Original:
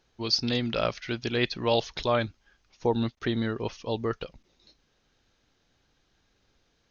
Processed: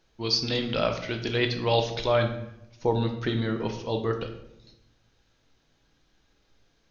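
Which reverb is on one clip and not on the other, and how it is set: simulated room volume 230 m³, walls mixed, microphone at 0.66 m

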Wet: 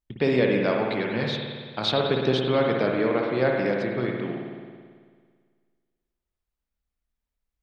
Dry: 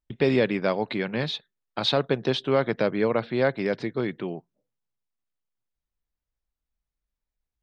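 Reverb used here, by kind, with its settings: spring tank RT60 1.8 s, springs 55 ms, chirp 50 ms, DRR 0 dB; trim -1.5 dB

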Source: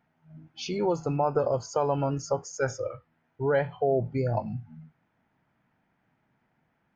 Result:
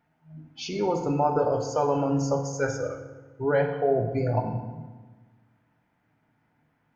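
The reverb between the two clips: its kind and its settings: FDN reverb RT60 1.3 s, low-frequency decay 1.3×, high-frequency decay 0.65×, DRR 3.5 dB

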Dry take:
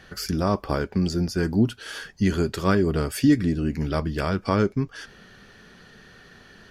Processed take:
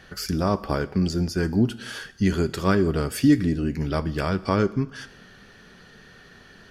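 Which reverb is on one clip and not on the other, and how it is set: plate-style reverb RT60 0.87 s, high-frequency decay 1×, DRR 16 dB

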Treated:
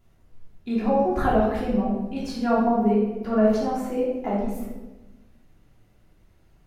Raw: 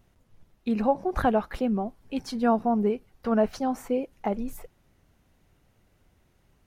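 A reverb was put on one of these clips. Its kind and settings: simulated room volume 520 m³, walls mixed, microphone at 3.1 m; trim -5.5 dB

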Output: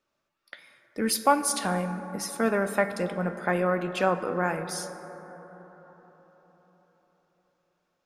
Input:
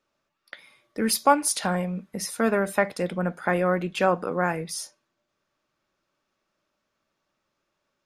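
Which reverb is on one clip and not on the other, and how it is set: plate-style reverb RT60 4.6 s, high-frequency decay 0.25×, DRR 9 dB; trim -2.5 dB

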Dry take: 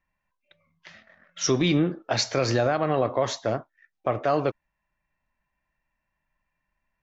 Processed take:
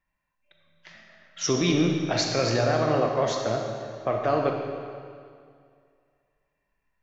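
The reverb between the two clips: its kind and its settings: algorithmic reverb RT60 2.2 s, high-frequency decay 0.9×, pre-delay 0 ms, DRR 1.5 dB; trim -2 dB

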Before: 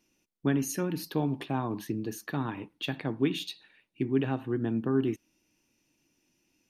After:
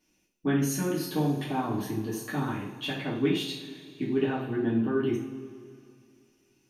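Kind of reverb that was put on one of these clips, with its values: two-slope reverb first 0.46 s, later 2.5 s, from -17 dB, DRR -6.5 dB; trim -4.5 dB

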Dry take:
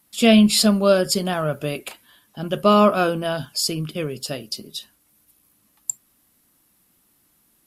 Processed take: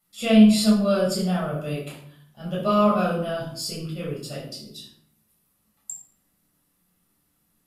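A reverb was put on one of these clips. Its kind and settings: simulated room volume 1000 m³, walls furnished, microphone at 6.8 m; trim -14.5 dB

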